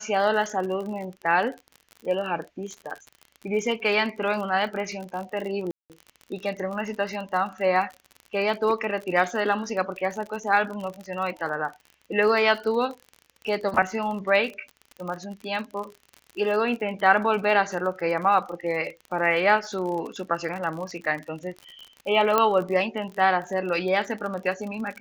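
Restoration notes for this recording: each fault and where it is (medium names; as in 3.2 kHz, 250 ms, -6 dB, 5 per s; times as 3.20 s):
crackle 45 per s -32 dBFS
5.71–5.90 s: dropout 188 ms
22.38 s: pop -7 dBFS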